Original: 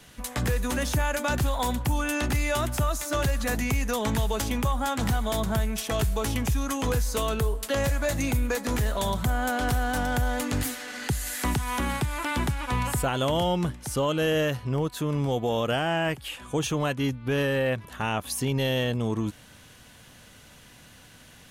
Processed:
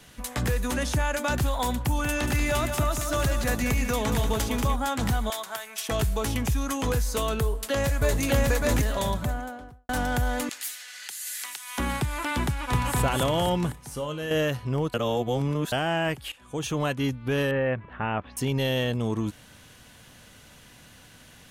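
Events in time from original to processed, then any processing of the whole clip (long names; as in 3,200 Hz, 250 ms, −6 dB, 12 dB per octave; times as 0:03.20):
0:00.74–0:01.18: low-pass filter 11,000 Hz
0:01.79–0:04.76: repeating echo 186 ms, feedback 45%, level −7.5 dB
0:05.30–0:05.89: high-pass filter 900 Hz
0:07.41–0:08.21: delay throw 600 ms, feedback 30%, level 0 dB
0:08.95–0:09.89: fade out and dull
0:10.49–0:11.78: Bessel high-pass filter 2,600 Hz
0:12.46–0:12.97: delay throw 260 ms, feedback 50%, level −1.5 dB
0:13.72–0:14.31: tuned comb filter 50 Hz, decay 0.36 s, harmonics odd, mix 70%
0:14.94–0:15.72: reverse
0:16.32–0:16.80: fade in, from −16.5 dB
0:17.51–0:18.37: low-pass filter 2,400 Hz 24 dB per octave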